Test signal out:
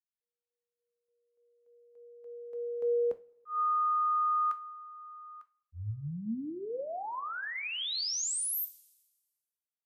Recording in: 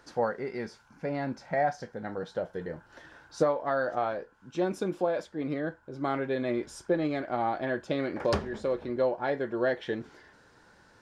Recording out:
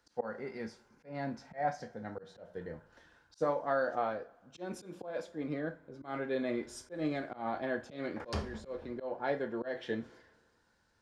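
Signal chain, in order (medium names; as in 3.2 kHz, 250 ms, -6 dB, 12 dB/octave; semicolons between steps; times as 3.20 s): two-slope reverb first 0.3 s, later 2.1 s, from -22 dB, DRR 8 dB; slow attack 148 ms; three bands expanded up and down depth 40%; trim -5 dB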